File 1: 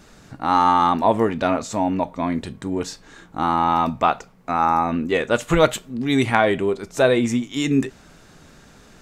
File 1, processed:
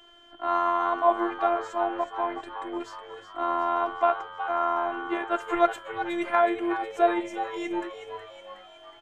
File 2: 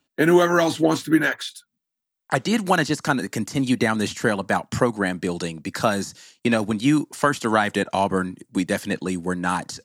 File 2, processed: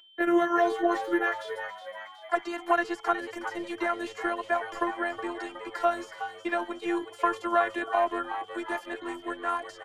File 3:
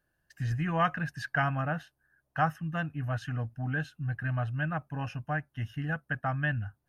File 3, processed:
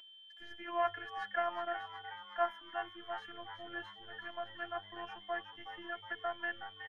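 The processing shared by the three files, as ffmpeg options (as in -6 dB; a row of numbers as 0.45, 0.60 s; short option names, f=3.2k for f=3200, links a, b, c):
-filter_complex "[0:a]aeval=exprs='val(0)+0.0178*sin(2*PI*3200*n/s)':c=same,acrossover=split=390 2000:gain=0.2 1 0.158[a][b][c];[a][b][c]amix=inputs=3:normalize=0,acrossover=split=300|2000[d][e][f];[d]asoftclip=type=tanh:threshold=-30.5dB[g];[g][e][f]amix=inputs=3:normalize=0,afftfilt=real='hypot(re,im)*cos(PI*b)':imag='0':win_size=512:overlap=0.75,asplit=7[h][i][j][k][l][m][n];[i]adelay=368,afreqshift=100,volume=-10.5dB[o];[j]adelay=736,afreqshift=200,volume=-15.9dB[p];[k]adelay=1104,afreqshift=300,volume=-21.2dB[q];[l]adelay=1472,afreqshift=400,volume=-26.6dB[r];[m]adelay=1840,afreqshift=500,volume=-31.9dB[s];[n]adelay=2208,afreqshift=600,volume=-37.3dB[t];[h][o][p][q][r][s][t]amix=inputs=7:normalize=0"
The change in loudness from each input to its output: -6.5, -7.0, -8.0 LU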